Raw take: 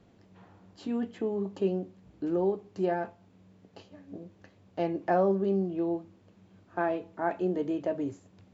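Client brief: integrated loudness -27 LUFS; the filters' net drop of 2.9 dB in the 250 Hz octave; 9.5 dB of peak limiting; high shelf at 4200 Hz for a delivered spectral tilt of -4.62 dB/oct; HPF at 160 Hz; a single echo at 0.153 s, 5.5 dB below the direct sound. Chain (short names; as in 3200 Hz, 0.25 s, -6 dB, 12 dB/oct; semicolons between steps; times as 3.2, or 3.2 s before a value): HPF 160 Hz; bell 250 Hz -3.5 dB; high shelf 4200 Hz -6.5 dB; limiter -25 dBFS; echo 0.153 s -5.5 dB; gain +8 dB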